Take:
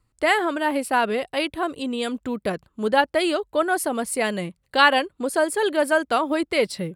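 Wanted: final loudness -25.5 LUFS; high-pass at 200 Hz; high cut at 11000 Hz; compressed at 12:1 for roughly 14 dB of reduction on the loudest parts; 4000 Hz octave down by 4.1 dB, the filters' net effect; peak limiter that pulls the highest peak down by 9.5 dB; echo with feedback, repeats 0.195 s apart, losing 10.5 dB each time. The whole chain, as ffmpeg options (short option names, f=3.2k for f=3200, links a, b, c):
-af "highpass=200,lowpass=11k,equalizer=f=4k:t=o:g=-6,acompressor=threshold=-26dB:ratio=12,alimiter=level_in=2.5dB:limit=-24dB:level=0:latency=1,volume=-2.5dB,aecho=1:1:195|390|585:0.299|0.0896|0.0269,volume=10dB"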